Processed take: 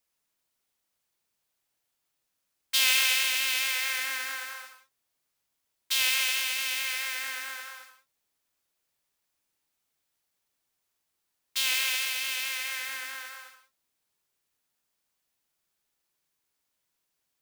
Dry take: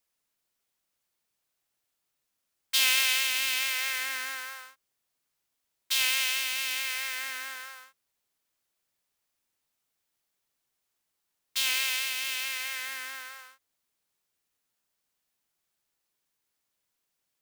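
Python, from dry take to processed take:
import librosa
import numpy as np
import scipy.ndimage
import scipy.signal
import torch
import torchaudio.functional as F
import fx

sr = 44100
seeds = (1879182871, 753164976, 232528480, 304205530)

y = fx.rev_gated(x, sr, seeds[0], gate_ms=150, shape='rising', drr_db=6.5)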